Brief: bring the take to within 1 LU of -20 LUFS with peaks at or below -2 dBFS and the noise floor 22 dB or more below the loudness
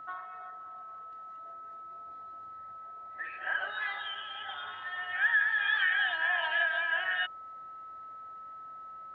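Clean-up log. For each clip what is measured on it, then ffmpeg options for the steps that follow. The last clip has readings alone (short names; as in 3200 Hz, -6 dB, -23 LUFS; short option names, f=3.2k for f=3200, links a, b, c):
steady tone 1300 Hz; tone level -43 dBFS; loudness -30.0 LUFS; peak -16.5 dBFS; loudness target -20.0 LUFS
-> -af "bandreject=f=1.3k:w=30"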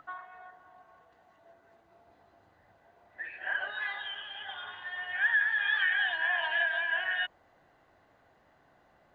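steady tone none; loudness -30.0 LUFS; peak -16.0 dBFS; loudness target -20.0 LUFS
-> -af "volume=10dB"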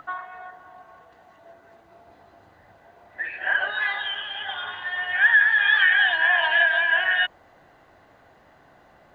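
loudness -20.0 LUFS; peak -6.0 dBFS; noise floor -56 dBFS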